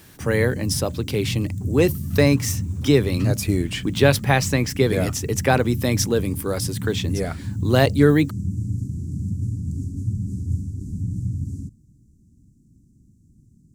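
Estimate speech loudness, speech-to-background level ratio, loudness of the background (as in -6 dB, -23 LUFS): -21.5 LUFS, 7.0 dB, -28.5 LUFS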